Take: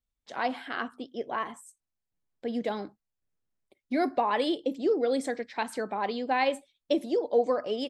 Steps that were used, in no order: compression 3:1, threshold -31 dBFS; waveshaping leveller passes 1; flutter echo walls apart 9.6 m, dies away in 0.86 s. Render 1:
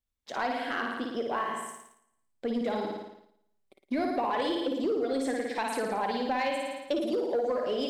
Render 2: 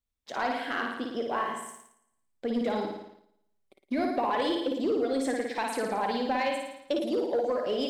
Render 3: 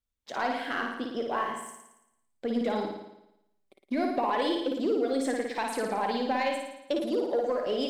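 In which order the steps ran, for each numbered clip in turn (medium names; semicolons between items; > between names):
flutter echo > compression > waveshaping leveller; compression > flutter echo > waveshaping leveller; compression > waveshaping leveller > flutter echo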